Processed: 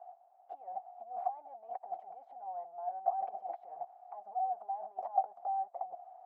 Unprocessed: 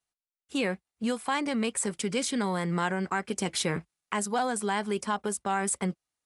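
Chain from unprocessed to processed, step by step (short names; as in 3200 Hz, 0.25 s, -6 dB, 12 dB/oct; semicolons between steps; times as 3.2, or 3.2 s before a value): power-law curve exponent 0.5; negative-ratio compressor -29 dBFS, ratio -0.5; Butterworth band-pass 730 Hz, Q 7.3; gain +8.5 dB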